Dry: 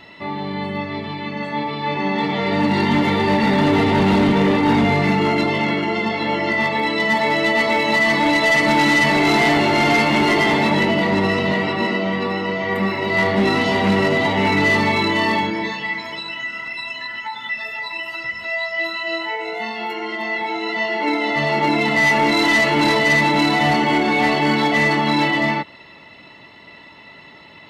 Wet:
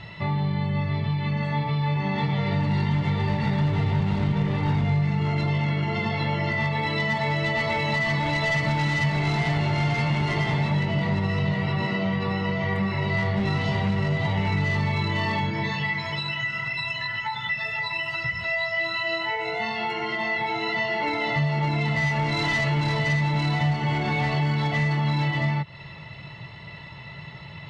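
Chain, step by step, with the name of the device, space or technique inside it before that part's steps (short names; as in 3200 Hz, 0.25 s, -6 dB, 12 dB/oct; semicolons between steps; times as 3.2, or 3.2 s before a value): jukebox (LPF 7200 Hz 12 dB/oct; resonant low shelf 190 Hz +10.5 dB, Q 3; compressor 4:1, threshold -23 dBFS, peak gain reduction 16 dB)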